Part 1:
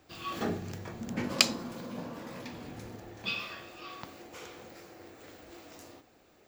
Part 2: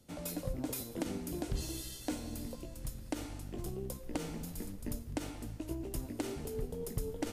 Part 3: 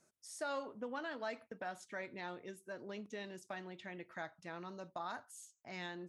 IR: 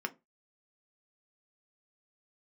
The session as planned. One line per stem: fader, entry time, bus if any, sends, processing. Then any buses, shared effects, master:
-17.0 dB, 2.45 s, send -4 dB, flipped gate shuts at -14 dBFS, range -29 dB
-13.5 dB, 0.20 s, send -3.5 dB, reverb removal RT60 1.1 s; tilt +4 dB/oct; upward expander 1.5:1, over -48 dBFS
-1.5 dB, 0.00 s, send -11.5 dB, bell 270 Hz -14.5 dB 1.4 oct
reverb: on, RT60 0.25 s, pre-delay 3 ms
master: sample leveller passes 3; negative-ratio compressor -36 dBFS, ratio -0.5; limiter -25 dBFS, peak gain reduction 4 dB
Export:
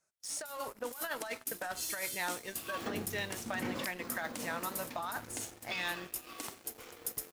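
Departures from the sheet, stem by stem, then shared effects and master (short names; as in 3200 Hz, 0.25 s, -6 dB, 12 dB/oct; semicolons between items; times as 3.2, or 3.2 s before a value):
stem 2: missing reverb removal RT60 1.1 s; reverb return -8.5 dB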